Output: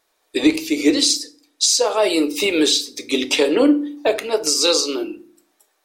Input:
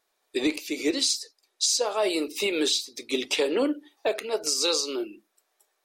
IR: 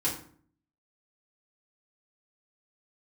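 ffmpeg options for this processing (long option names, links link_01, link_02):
-filter_complex "[0:a]asplit=2[link_01][link_02];[1:a]atrim=start_sample=2205,lowshelf=frequency=170:gain=11[link_03];[link_02][link_03]afir=irnorm=-1:irlink=0,volume=-15.5dB[link_04];[link_01][link_04]amix=inputs=2:normalize=0,volume=6dB"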